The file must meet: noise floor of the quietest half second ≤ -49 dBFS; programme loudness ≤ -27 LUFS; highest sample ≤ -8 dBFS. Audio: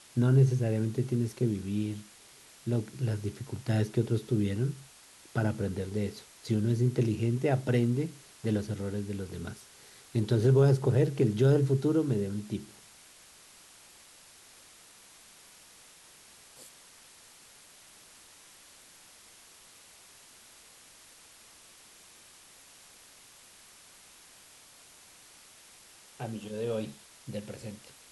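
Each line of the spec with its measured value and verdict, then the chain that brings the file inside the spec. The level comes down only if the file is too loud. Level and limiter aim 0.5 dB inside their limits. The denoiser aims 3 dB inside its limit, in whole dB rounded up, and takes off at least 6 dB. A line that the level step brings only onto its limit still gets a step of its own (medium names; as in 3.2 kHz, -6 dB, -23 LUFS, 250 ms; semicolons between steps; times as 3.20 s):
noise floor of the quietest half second -55 dBFS: pass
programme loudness -30.0 LUFS: pass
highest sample -12.5 dBFS: pass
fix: none needed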